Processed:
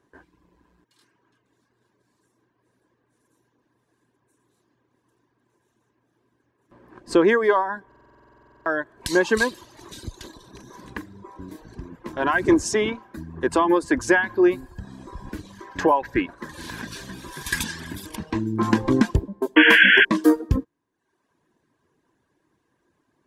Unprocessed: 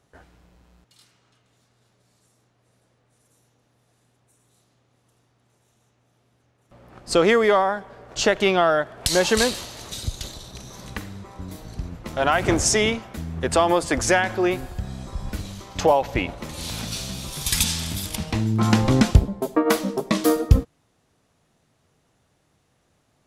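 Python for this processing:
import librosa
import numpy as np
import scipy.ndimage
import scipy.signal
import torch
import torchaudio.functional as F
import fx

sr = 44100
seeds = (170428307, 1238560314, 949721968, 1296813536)

y = fx.dereverb_blind(x, sr, rt60_s=0.78)
y = fx.peak_eq(y, sr, hz=1700.0, db=9.5, octaves=0.5, at=(15.53, 17.98))
y = fx.spec_paint(y, sr, seeds[0], shape='noise', start_s=19.56, length_s=0.49, low_hz=1400.0, high_hz=3400.0, level_db=-12.0)
y = fx.small_body(y, sr, hz=(330.0, 1000.0, 1600.0), ring_ms=20, db=15)
y = fx.buffer_glitch(y, sr, at_s=(7.87,), block=2048, repeats=16)
y = F.gain(torch.from_numpy(y), -8.5).numpy()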